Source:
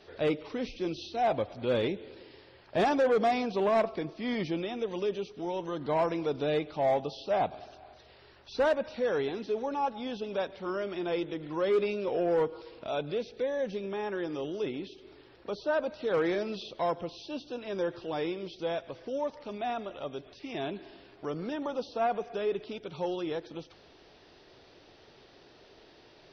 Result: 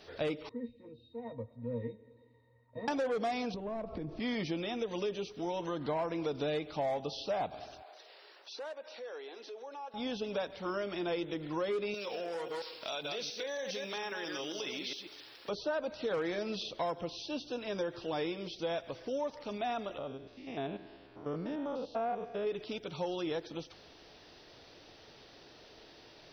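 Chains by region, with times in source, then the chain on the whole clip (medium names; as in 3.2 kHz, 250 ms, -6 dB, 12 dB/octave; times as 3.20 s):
0.49–2.88 s: distance through air 300 m + pitch-class resonator A#, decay 0.12 s
3.54–4.20 s: tilt EQ -4 dB/octave + compression 10:1, threshold -35 dBFS
5.62–6.24 s: treble shelf 5.5 kHz -11 dB + tape noise reduction on one side only encoder only
7.82–9.94 s: high-pass 380 Hz 24 dB/octave + compression 2.5:1, threshold -49 dBFS
11.94–15.49 s: chunks repeated in reverse 136 ms, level -6 dB + tilt EQ +4 dB/octave + compression 10:1, threshold -34 dBFS
19.98–22.47 s: spectrogram pixelated in time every 100 ms + low-pass 1.7 kHz 6 dB/octave
whole clip: treble shelf 4.8 kHz +8 dB; band-stop 380 Hz, Q 12; compression, threshold -31 dBFS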